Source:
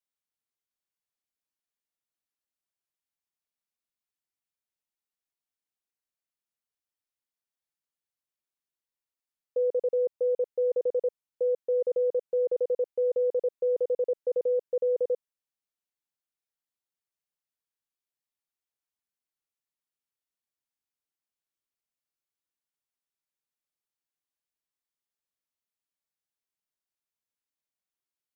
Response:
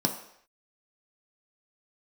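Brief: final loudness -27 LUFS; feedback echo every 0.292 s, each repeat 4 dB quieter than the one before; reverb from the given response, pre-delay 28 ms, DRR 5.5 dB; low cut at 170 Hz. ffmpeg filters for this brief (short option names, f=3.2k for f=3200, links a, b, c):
-filter_complex "[0:a]highpass=170,aecho=1:1:292|584|876|1168|1460|1752|2044|2336|2628:0.631|0.398|0.25|0.158|0.0994|0.0626|0.0394|0.0249|0.0157,asplit=2[a][b];[1:a]atrim=start_sample=2205,adelay=28[c];[b][c]afir=irnorm=-1:irlink=0,volume=-14dB[d];[a][d]amix=inputs=2:normalize=0,volume=-2.5dB"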